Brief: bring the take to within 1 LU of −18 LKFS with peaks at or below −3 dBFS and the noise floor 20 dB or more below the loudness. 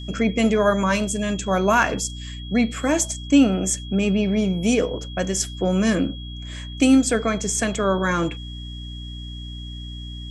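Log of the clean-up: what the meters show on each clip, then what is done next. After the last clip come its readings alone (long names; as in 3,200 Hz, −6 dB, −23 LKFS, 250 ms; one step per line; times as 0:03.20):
mains hum 60 Hz; hum harmonics up to 300 Hz; level of the hum −32 dBFS; interfering tone 3,300 Hz; level of the tone −39 dBFS; integrated loudness −21.0 LKFS; sample peak −5.0 dBFS; target loudness −18.0 LKFS
→ hum removal 60 Hz, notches 5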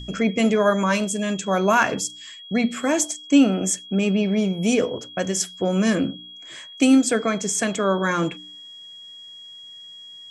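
mains hum none found; interfering tone 3,300 Hz; level of the tone −39 dBFS
→ notch filter 3,300 Hz, Q 30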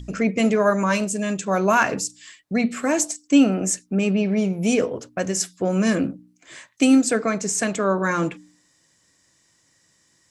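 interfering tone none found; integrated loudness −21.5 LKFS; sample peak −5.5 dBFS; target loudness −18.0 LKFS
→ level +3.5 dB
brickwall limiter −3 dBFS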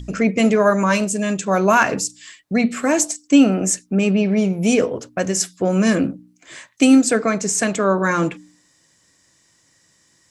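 integrated loudness −18.0 LKFS; sample peak −3.0 dBFS; background noise floor −60 dBFS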